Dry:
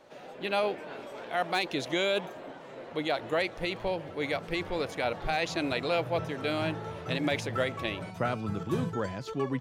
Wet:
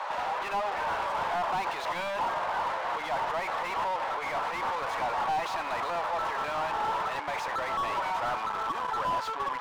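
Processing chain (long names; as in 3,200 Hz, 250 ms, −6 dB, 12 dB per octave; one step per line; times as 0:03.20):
in parallel at −1.5 dB: compressor whose output falls as the input rises −34 dBFS
on the sum: soft clipping −25.5 dBFS, distortion −12 dB
mid-hump overdrive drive 25 dB, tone 1,800 Hz, clips at −25.5 dBFS
high-pass with resonance 960 Hz, resonance Q 3.4
slew-rate limiting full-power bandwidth 47 Hz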